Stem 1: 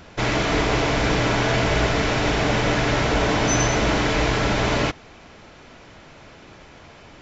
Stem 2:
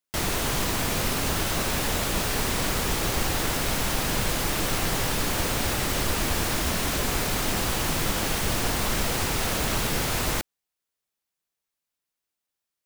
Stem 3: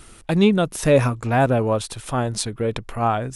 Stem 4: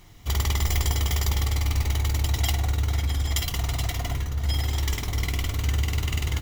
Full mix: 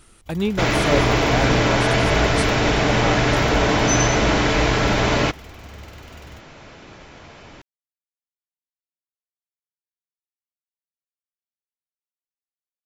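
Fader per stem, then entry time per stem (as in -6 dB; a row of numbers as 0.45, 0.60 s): +2.5 dB, off, -6.5 dB, -17.0 dB; 0.40 s, off, 0.00 s, 0.00 s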